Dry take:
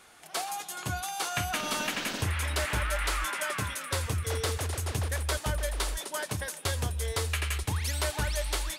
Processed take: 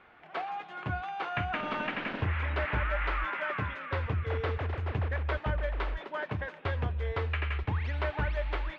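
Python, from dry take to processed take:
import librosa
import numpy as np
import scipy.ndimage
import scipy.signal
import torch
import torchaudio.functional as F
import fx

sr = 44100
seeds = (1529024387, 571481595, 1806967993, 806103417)

y = scipy.signal.sosfilt(scipy.signal.butter(4, 2500.0, 'lowpass', fs=sr, output='sos'), x)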